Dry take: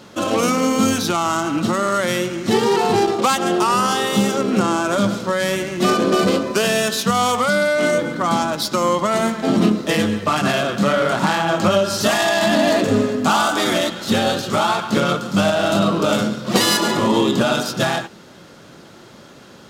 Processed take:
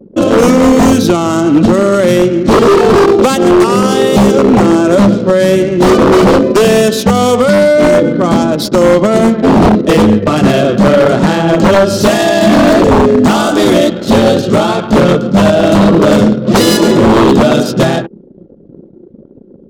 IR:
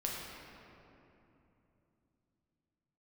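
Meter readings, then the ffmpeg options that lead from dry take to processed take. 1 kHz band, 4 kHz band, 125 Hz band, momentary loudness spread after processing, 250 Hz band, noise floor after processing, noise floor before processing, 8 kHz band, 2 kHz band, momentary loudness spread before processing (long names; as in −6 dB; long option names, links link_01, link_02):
+6.0 dB, +3.5 dB, +11.5 dB, 3 LU, +11.5 dB, −38 dBFS, −43 dBFS, +3.5 dB, +4.5 dB, 4 LU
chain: -af "lowshelf=frequency=670:width_type=q:width=1.5:gain=9,anlmdn=158,aeval=exprs='0.562*(abs(mod(val(0)/0.562+3,4)-2)-1)':channel_layout=same,volume=4dB"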